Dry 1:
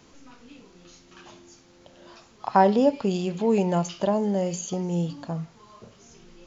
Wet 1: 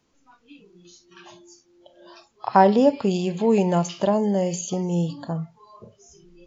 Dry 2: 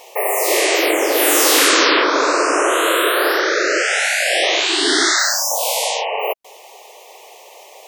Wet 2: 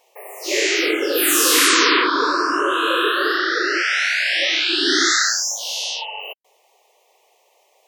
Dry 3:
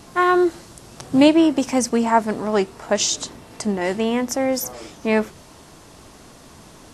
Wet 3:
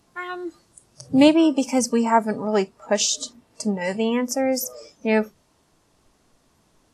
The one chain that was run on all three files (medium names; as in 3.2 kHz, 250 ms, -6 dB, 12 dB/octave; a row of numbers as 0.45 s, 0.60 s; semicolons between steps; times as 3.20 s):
spectral noise reduction 17 dB; peak normalisation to -3 dBFS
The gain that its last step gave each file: +3.0 dB, -1.0 dB, -1.0 dB